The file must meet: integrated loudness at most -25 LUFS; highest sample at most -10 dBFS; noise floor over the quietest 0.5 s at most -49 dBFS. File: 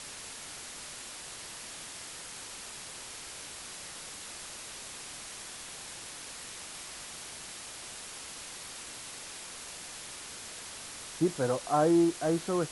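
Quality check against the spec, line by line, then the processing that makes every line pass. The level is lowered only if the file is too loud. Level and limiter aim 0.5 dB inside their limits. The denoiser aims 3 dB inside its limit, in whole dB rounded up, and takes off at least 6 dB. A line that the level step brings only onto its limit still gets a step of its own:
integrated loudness -36.0 LUFS: OK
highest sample -14.5 dBFS: OK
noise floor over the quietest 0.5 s -44 dBFS: fail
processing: denoiser 8 dB, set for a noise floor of -44 dBFS

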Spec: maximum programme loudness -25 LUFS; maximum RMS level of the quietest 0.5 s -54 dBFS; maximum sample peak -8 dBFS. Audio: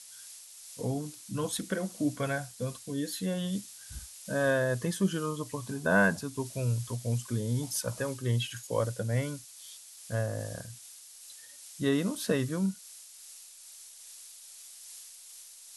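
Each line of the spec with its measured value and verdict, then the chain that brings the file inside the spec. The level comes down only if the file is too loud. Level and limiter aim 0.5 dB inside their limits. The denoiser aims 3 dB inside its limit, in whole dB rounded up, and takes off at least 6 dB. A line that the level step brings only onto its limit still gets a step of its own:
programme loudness -32.0 LUFS: OK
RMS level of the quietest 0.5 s -50 dBFS: fail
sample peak -12.5 dBFS: OK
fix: denoiser 7 dB, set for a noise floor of -50 dBFS

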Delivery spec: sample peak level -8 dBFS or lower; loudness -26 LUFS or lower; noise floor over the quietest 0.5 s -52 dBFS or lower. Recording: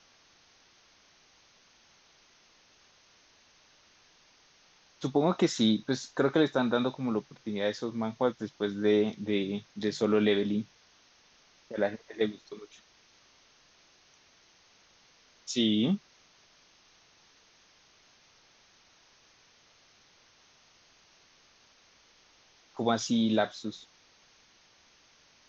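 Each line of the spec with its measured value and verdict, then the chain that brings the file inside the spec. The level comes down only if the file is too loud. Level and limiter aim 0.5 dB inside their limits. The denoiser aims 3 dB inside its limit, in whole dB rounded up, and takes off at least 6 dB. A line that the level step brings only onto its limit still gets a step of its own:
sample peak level -12.5 dBFS: OK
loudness -29.5 LUFS: OK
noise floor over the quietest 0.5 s -62 dBFS: OK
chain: none

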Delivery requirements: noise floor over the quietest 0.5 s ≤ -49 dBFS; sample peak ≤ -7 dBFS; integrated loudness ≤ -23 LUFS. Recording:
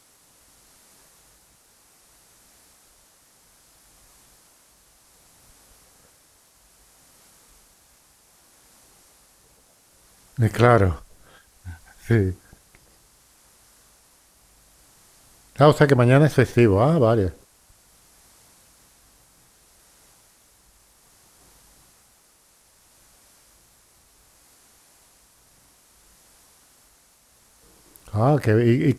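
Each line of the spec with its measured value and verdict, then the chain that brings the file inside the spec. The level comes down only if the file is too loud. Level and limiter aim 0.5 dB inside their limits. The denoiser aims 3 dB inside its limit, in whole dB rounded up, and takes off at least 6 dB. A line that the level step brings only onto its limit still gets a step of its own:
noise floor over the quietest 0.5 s -58 dBFS: OK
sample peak -3.0 dBFS: fail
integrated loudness -19.0 LUFS: fail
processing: gain -4.5 dB

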